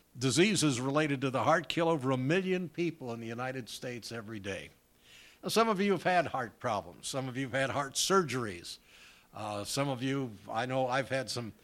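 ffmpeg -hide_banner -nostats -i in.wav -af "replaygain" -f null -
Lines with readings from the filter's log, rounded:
track_gain = +11.7 dB
track_peak = 0.164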